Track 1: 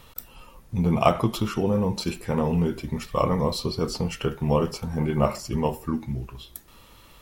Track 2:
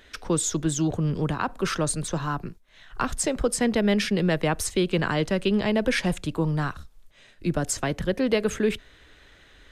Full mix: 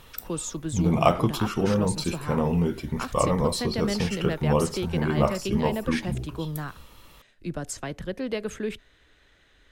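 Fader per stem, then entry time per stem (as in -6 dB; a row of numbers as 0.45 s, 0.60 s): -0.5 dB, -7.0 dB; 0.00 s, 0.00 s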